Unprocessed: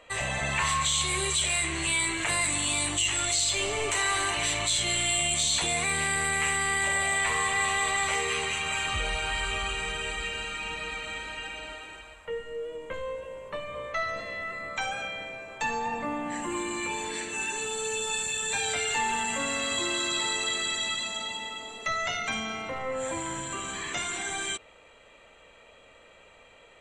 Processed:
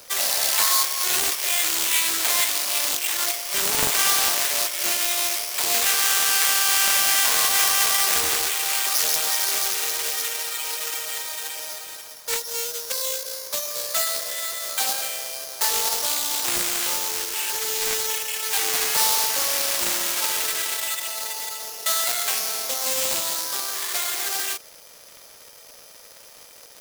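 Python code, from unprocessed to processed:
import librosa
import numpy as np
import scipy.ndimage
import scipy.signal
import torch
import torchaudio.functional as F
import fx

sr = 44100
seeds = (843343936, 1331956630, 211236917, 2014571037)

y = fx.halfwave_hold(x, sr)
y = (np.kron(scipy.signal.resample_poly(y, 1, 8), np.eye(8)[0]) * 8)[:len(y)]
y = scipy.signal.sosfilt(scipy.signal.butter(4, 410.0, 'highpass', fs=sr, output='sos'), y)
y = fx.dmg_crackle(y, sr, seeds[0], per_s=170.0, level_db=-30.0)
y = fx.doppler_dist(y, sr, depth_ms=0.65)
y = F.gain(torch.from_numpy(y), -3.0).numpy()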